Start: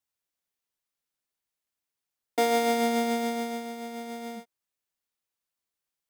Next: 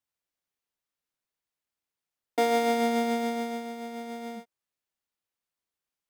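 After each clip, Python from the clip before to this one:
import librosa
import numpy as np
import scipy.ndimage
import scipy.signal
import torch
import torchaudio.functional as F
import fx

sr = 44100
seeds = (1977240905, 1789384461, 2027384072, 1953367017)

y = fx.high_shelf(x, sr, hz=4600.0, db=-5.5)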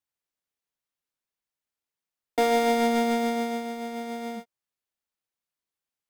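y = fx.leveller(x, sr, passes=1)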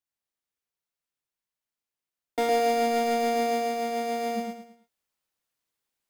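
y = fx.rider(x, sr, range_db=4, speed_s=0.5)
y = fx.echo_feedback(y, sr, ms=109, feedback_pct=34, wet_db=-3)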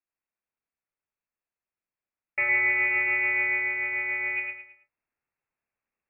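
y = fx.freq_invert(x, sr, carrier_hz=2700)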